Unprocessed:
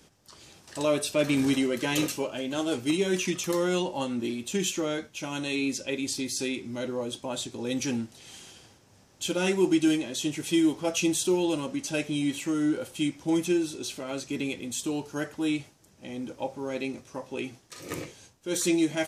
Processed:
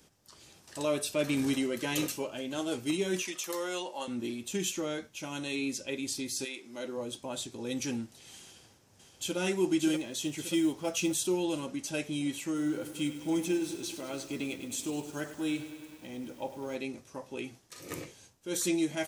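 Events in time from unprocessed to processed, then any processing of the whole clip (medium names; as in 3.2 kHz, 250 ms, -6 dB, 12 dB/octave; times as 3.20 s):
3.22–4.08 s: high-pass 470 Hz
6.44–6.96 s: high-pass 670 Hz -> 190 Hz
8.41–9.38 s: echo throw 580 ms, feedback 60%, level -6 dB
9.95–11.27 s: companded quantiser 8-bit
12.46–16.76 s: bit-crushed delay 101 ms, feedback 80%, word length 8-bit, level -12.5 dB
whole clip: treble shelf 11 kHz +7.5 dB; trim -5 dB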